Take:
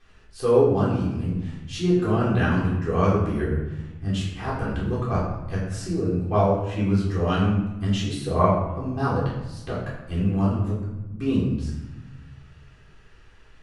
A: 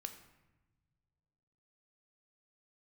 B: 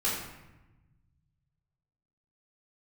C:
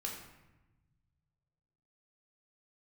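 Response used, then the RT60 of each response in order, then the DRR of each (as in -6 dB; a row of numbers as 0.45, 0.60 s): B; not exponential, 1.0 s, 1.0 s; 6.0, -11.5, -2.5 dB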